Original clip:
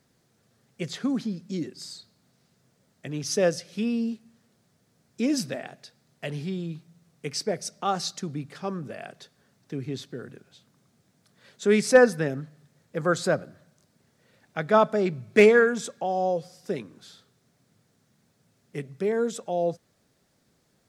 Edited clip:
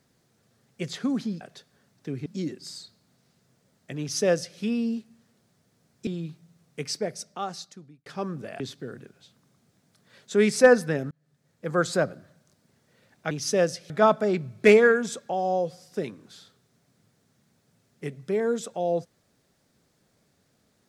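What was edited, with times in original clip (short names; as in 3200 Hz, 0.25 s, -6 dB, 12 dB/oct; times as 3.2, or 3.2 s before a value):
3.15–3.74 copy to 14.62
5.22–6.53 cut
7.28–8.52 fade out
9.06–9.91 move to 1.41
12.42–13.09 fade in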